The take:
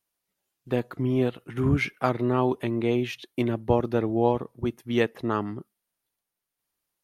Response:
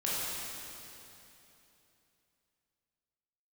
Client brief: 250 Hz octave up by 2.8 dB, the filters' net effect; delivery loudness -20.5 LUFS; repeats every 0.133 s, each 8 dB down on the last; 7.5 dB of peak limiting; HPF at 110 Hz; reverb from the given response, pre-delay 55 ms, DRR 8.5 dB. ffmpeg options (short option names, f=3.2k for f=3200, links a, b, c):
-filter_complex "[0:a]highpass=110,equalizer=f=250:t=o:g=3.5,alimiter=limit=-15dB:level=0:latency=1,aecho=1:1:133|266|399|532|665:0.398|0.159|0.0637|0.0255|0.0102,asplit=2[a][b];[1:a]atrim=start_sample=2205,adelay=55[c];[b][c]afir=irnorm=-1:irlink=0,volume=-16dB[d];[a][d]amix=inputs=2:normalize=0,volume=5dB"